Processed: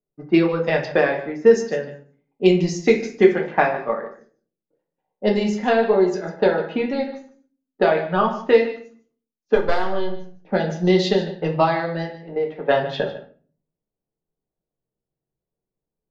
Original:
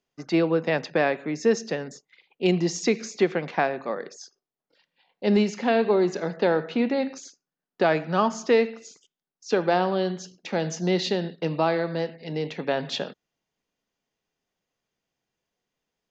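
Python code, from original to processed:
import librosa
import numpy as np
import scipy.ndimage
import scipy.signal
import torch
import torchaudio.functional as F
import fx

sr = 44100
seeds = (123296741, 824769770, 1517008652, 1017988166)

p1 = fx.halfwave_gain(x, sr, db=-7.0, at=(9.55, 10.22))
p2 = fx.highpass(p1, sr, hz=fx.line((12.11, 210.0), (12.69, 460.0)), slope=6, at=(12.11, 12.69), fade=0.02)
p3 = fx.env_lowpass(p2, sr, base_hz=570.0, full_db=-18.5)
p4 = fx.lowpass(p3, sr, hz=4200.0, slope=24, at=(7.88, 8.54))
p5 = fx.noise_reduce_blind(p4, sr, reduce_db=7)
p6 = fx.rider(p5, sr, range_db=3, speed_s=2.0)
p7 = fx.transient(p6, sr, attack_db=6, sustain_db=0)
p8 = p7 + fx.echo_single(p7, sr, ms=149, db=-15.0, dry=0)
y = fx.room_shoebox(p8, sr, seeds[0], volume_m3=31.0, walls='mixed', distance_m=0.48)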